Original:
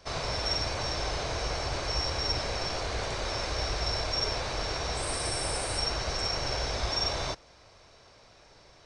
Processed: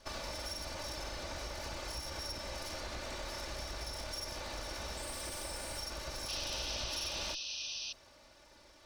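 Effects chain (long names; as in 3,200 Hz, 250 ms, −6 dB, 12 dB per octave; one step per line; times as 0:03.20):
lower of the sound and its delayed copy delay 3.4 ms
downward compressor, threshold −36 dBFS, peak gain reduction 9.5 dB
sound drawn into the spectrogram noise, 0:06.28–0:07.93, 2,400–6,200 Hz −39 dBFS
level −2.5 dB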